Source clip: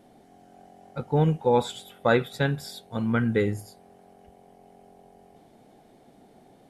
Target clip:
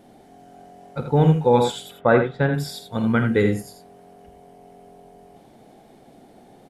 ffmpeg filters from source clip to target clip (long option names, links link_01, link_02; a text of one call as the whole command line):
ffmpeg -i in.wav -filter_complex "[0:a]asettb=1/sr,asplit=3[link_01][link_02][link_03];[link_01]atrim=end=1.914[link_04];[link_02]atrim=start=1.91:end=2.54,asetpts=PTS-STARTPTS,afade=type=in:duration=0.004:curve=qsin,afade=type=out:start_time=0.626:duration=0.004:curve=qsin,lowpass=1800[link_05];[link_03]atrim=start=2.536[link_06];[link_04][link_05]acrossfade=duration=0.004:curve1=hsin:curve2=qsin[link_07];[link_07][link_06]acrossfade=duration=0.004:curve1=qsin:curve2=hsin,asplit=2[link_08][link_09];[link_09]aecho=0:1:49|82|96:0.266|0.422|0.126[link_10];[link_08][link_10]amix=inputs=2:normalize=0,volume=4.5dB" out.wav